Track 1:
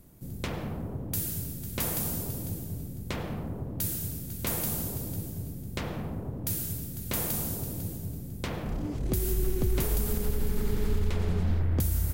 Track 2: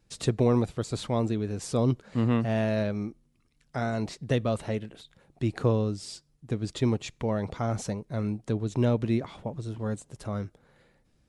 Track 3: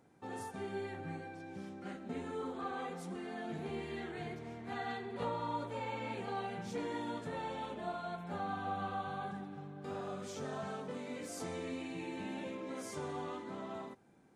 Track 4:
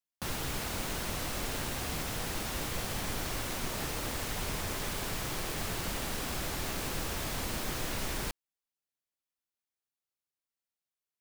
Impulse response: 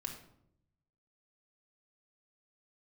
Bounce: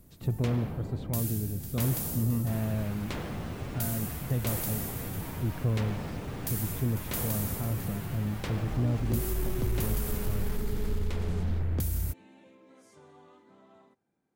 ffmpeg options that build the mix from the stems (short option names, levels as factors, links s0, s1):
-filter_complex "[0:a]volume=0.794[s0];[1:a]bass=f=250:g=13,treble=f=4000:g=-13,volume=0.266[s1];[2:a]volume=0.2[s2];[3:a]acrossover=split=2900[s3][s4];[s4]acompressor=threshold=0.00355:ratio=4:attack=1:release=60[s5];[s3][s5]amix=inputs=2:normalize=0,asplit=2[s6][s7];[s7]adelay=8.8,afreqshift=-0.66[s8];[s6][s8]amix=inputs=2:normalize=1,adelay=2250,volume=0.708[s9];[s0][s1][s2][s9]amix=inputs=4:normalize=0,asoftclip=type=tanh:threshold=0.106"